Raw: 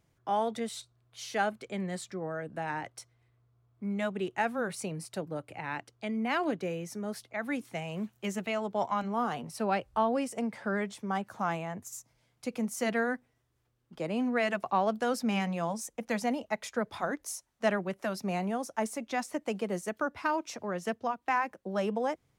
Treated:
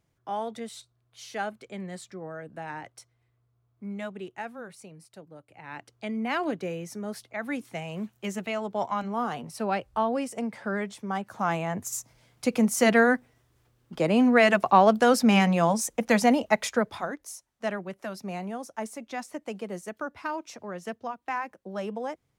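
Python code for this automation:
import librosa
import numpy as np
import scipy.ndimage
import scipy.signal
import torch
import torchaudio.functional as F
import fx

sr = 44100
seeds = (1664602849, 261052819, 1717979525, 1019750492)

y = fx.gain(x, sr, db=fx.line((3.92, -2.5), (4.89, -11.0), (5.49, -11.0), (5.92, 1.5), (11.23, 1.5), (11.9, 10.0), (16.66, 10.0), (17.17, -2.5)))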